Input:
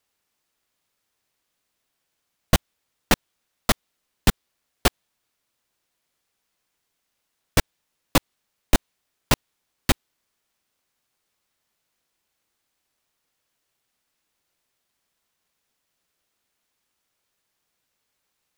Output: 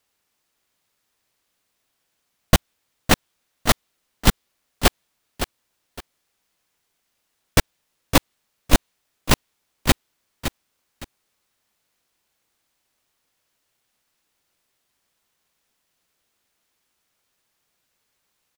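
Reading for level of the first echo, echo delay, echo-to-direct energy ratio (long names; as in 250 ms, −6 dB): −9.5 dB, 562 ms, −9.0 dB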